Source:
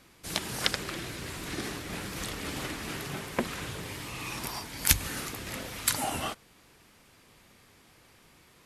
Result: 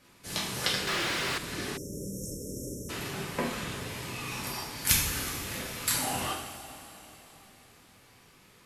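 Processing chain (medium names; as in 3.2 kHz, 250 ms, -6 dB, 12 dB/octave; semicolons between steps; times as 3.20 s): two-slope reverb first 0.59 s, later 3.7 s, from -14 dB, DRR -5 dB; 0.87–1.38 s: overdrive pedal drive 25 dB, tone 3.3 kHz, clips at -16 dBFS; 1.77–2.90 s: spectral selection erased 620–5300 Hz; trim -5.5 dB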